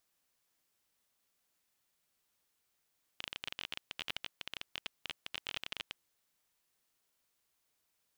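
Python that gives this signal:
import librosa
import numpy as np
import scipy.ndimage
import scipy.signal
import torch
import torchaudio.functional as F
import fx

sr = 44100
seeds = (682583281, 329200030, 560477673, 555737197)

y = fx.geiger_clicks(sr, seeds[0], length_s=2.87, per_s=21.0, level_db=-21.5)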